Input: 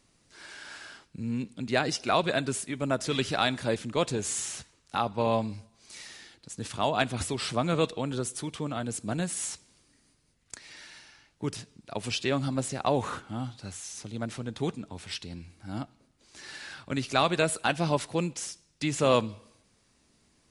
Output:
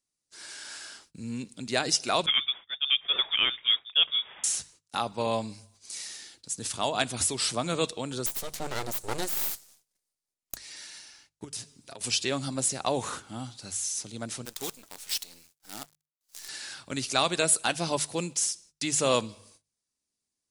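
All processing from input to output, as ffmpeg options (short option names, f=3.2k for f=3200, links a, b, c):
-filter_complex "[0:a]asettb=1/sr,asplit=3[a][b][c];[a]atrim=end=2.264[d];[b]atrim=start=2.26:end=4.44,asetpts=PTS-STARTPTS,afade=t=in:d=0.004:c=qsin,afade=t=out:st=2.176:d=0.004:c=qsin,agate=range=-33dB:threshold=-32dB:ratio=3:release=100:detection=peak,lowshelf=f=260:t=q:w=1.5:g=-13.5,lowpass=f=3.2k:t=q:w=0.5098,lowpass=f=3.2k:t=q:w=0.6013,lowpass=f=3.2k:t=q:w=0.9,lowpass=f=3.2k:t=q:w=2.563,afreqshift=-3800[e];[c]atrim=start=4.436[f];[d][e]acrossfade=d=0.004:c1=hsin:c2=qsin[g];[g][f]acrossfade=d=0.004:c1=qsin:c2=hsin,asettb=1/sr,asplit=3[h][i][j];[h]atrim=end=8.264[k];[i]atrim=start=8.26:end=10.57,asetpts=PTS-STARTPTS,afade=t=in:d=0.004:c=qsin,afade=t=out:st=2.306:d=0.004:c=qsin,equalizer=f=710:w=0.57:g=6.5,aeval=exprs='abs(val(0))':c=same[l];[j]atrim=start=10.566[m];[k][l]acrossfade=d=0.004:c1=hsin:c2=qsin[n];[n][m]acrossfade=d=0.004:c1=qsin:c2=hsin,asettb=1/sr,asplit=3[o][p][q];[o]atrim=end=11.444[r];[p]atrim=start=11.44:end=12.01,asetpts=PTS-STARTPTS,afade=t=in:d=0.004:c=qsin,afade=t=out:st=0.566:d=0.004:c=qsin,aecho=1:1:7.5:0.39,atrim=end_sample=25137,acompressor=threshold=-37dB:ratio=16:attack=3.2:release=140:knee=1:detection=peak[s];[q]atrim=start=12.006[t];[r][s]acrossfade=d=0.004:c1=hsin:c2=qsin[u];[u][t]acrossfade=d=0.004:c1=qsin:c2=hsin,asettb=1/sr,asplit=3[v][w][x];[v]atrim=end=14.454[y];[w]atrim=start=14.45:end=16.49,asetpts=PTS-STARTPTS,afade=t=in:d=0.004:c=qsin,afade=t=out:st=2.036:d=0.004:c=qsin,highpass=f=630:p=1,acrusher=bits=7:dc=4:mix=0:aa=0.000001[z];[x]atrim=start=16.486[aa];[y][z]acrossfade=d=0.004:c1=hsin:c2=qsin[ab];[ab][aa]acrossfade=d=0.004:c1=qsin:c2=hsin,agate=range=-24dB:threshold=-59dB:ratio=16:detection=peak,bass=f=250:g=-3,treble=f=4k:g=13,bandreject=f=50:t=h:w=6,bandreject=f=100:t=h:w=6,bandreject=f=150:t=h:w=6,volume=-2dB"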